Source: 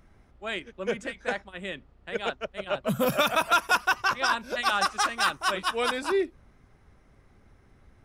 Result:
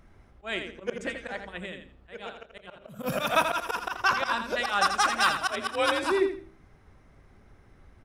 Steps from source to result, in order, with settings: treble shelf 4.2 kHz -3 dB; de-hum 65.43 Hz, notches 8; 1.59–3.03 s: compression 10:1, threshold -37 dBFS, peak gain reduction 14.5 dB; 5.49–6.04 s: frequency shift +44 Hz; slow attack 118 ms; feedback delay 83 ms, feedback 25%, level -8 dB; trim +2 dB

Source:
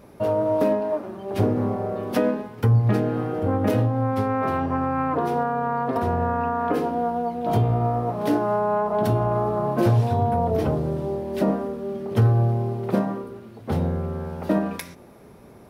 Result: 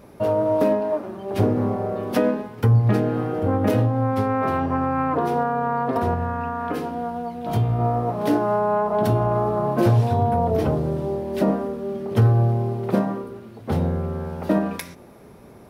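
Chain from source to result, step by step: 6.14–7.79 s: peaking EQ 500 Hz -6.5 dB 2.5 oct; trim +1.5 dB

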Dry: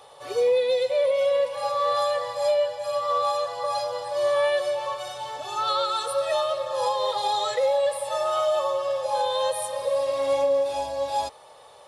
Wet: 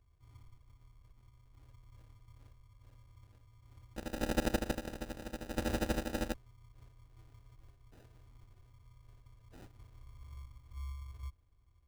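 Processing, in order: 3.96–6.34 s: sorted samples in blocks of 32 samples; inverse Chebyshev band-stop 470–4400 Hz, stop band 80 dB; bass shelf 66 Hz +10 dB; sample-rate reducer 1.1 kHz, jitter 0%; trim +6 dB

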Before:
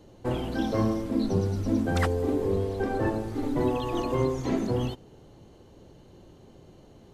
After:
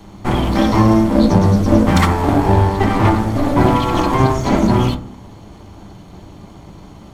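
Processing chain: comb filter that takes the minimum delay 0.9 ms; on a send at -5.5 dB: reverberation RT60 0.60 s, pre-delay 5 ms; on the sum: loudness maximiser +14.5 dB; trim -1 dB

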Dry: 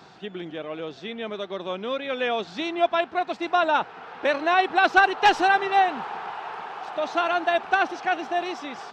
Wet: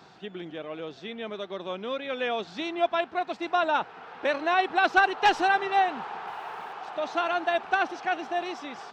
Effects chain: 6.27–6.73 s: jump at every zero crossing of -51 dBFS; trim -3.5 dB

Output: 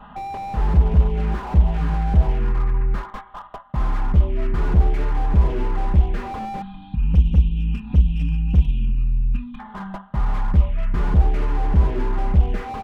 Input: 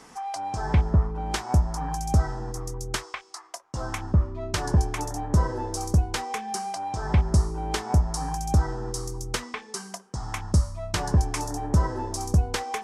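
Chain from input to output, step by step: CVSD coder 16 kbps; bass shelf 64 Hz +10.5 dB; touch-sensitive phaser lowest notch 380 Hz, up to 1.6 kHz, full sweep at -13.5 dBFS; dynamic bell 1 kHz, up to +5 dB, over -48 dBFS, Q 0.99; in parallel at -0.5 dB: compression, threshold -26 dBFS, peak gain reduction 14.5 dB; on the sum: time-frequency box 6.61–9.60 s, 310–2400 Hz -28 dB; comb 4.9 ms, depth 70%; on a send at -21.5 dB: reverberation RT60 0.85 s, pre-delay 3 ms; on the sum: slew-rate limiter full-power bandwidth 21 Hz; trim +2.5 dB

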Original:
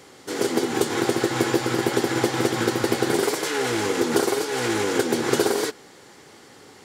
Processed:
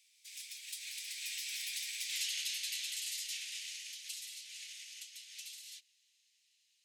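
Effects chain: Doppler pass-by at 2.16 s, 36 m/s, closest 2.3 m; steep high-pass 2.3 kHz 48 dB/octave; reverse; compression 10:1, threshold -51 dBFS, peak gain reduction 19 dB; reverse; trim +15.5 dB

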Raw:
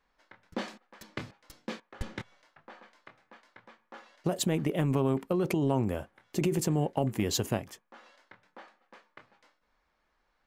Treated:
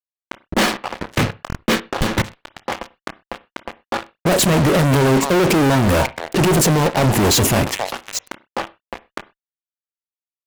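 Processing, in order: level-controlled noise filter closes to 820 Hz, open at -29 dBFS; in parallel at 0 dB: level held to a coarse grid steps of 21 dB; on the sum: repeats whose band climbs or falls 272 ms, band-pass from 940 Hz, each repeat 1.4 oct, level -12 dB; fuzz box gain 46 dB, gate -48 dBFS; on a send at -16 dB: reverberation, pre-delay 30 ms; on the sum: buffer glitch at 1.48 s, samples 1024, times 2

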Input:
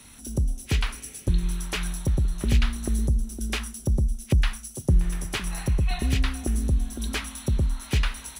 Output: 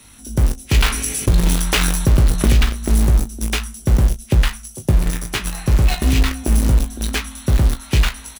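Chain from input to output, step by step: in parallel at -4 dB: bit crusher 4-bit; on the sum: early reflections 19 ms -7.5 dB, 35 ms -15 dB; loudness maximiser +8 dB; 0.74–2.65 s: level flattener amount 50%; trim -5.5 dB

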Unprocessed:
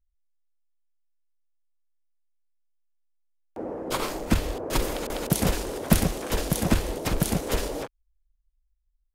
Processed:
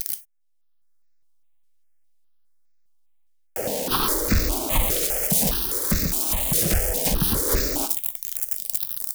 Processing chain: zero-crossing glitches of -8.5 dBFS; level rider gain up to 11 dB; hard clipper -15 dBFS, distortion -5 dB; gated-style reverb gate 120 ms falling, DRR 8.5 dB; stepped phaser 4.9 Hz 240–3100 Hz; trim +1 dB

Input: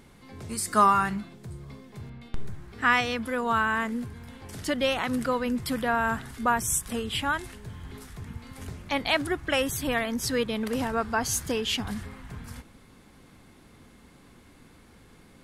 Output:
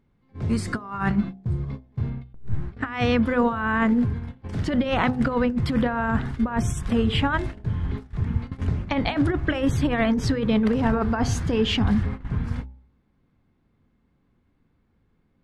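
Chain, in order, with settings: tone controls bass +6 dB, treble -1 dB; gate -37 dBFS, range -25 dB; compressor with a negative ratio -27 dBFS, ratio -0.5; tape spacing loss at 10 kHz 23 dB; de-hum 63.67 Hz, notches 14; trim +7.5 dB

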